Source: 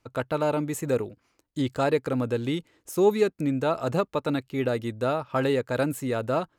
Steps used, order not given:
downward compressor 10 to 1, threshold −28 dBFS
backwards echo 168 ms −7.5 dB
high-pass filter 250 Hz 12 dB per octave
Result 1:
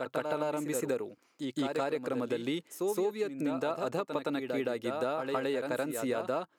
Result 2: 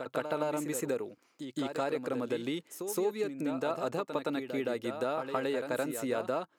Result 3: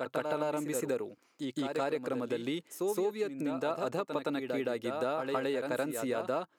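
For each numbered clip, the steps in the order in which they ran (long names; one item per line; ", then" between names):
high-pass filter, then backwards echo, then downward compressor
downward compressor, then high-pass filter, then backwards echo
backwards echo, then downward compressor, then high-pass filter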